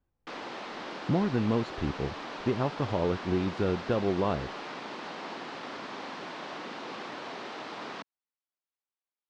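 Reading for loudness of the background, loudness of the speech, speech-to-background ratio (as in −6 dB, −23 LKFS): −39.5 LKFS, −30.5 LKFS, 9.0 dB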